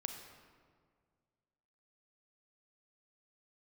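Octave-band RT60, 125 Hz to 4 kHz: 2.3, 2.1, 2.0, 1.7, 1.4, 1.1 seconds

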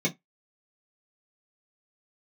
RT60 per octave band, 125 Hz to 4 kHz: 0.15, 0.15, 0.15, 0.15, 0.15, 0.10 seconds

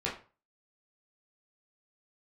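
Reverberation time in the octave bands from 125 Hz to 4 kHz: 0.45, 0.35, 0.35, 0.35, 0.30, 0.25 seconds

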